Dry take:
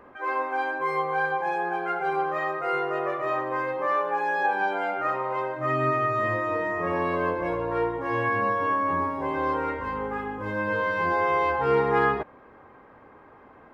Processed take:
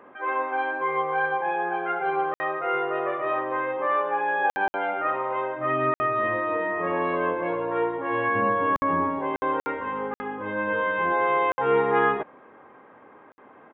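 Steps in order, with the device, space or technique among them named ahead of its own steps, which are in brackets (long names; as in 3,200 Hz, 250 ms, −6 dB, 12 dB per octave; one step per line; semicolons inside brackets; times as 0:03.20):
call with lost packets (high-pass filter 180 Hz 12 dB per octave; downsampling to 8,000 Hz; dropped packets of 60 ms)
0:08.35–0:09.19: low-shelf EQ 260 Hz +9.5 dB
level +1 dB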